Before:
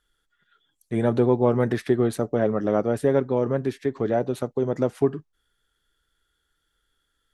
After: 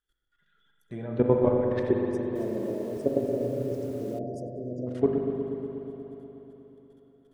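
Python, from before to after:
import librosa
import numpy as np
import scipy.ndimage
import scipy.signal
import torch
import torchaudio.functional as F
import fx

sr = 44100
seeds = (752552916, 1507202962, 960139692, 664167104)

y = fx.spec_quant(x, sr, step_db=15)
y = fx.env_lowpass_down(y, sr, base_hz=2700.0, full_db=-17.5)
y = fx.spec_erase(y, sr, start_s=1.91, length_s=2.96, low_hz=720.0, high_hz=4700.0)
y = fx.level_steps(y, sr, step_db=18)
y = fx.echo_feedback(y, sr, ms=96, feedback_pct=54, wet_db=-22)
y = fx.rev_spring(y, sr, rt60_s=4.0, pass_ms=(40, 60), chirp_ms=50, drr_db=0.0)
y = fx.echo_crushed(y, sr, ms=274, feedback_pct=55, bits=8, wet_db=-8, at=(2.08, 4.19))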